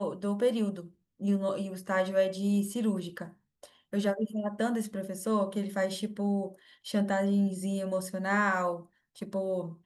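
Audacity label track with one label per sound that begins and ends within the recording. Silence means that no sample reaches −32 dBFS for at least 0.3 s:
1.230000	3.230000	sound
3.930000	6.470000	sound
6.870000	8.750000	sound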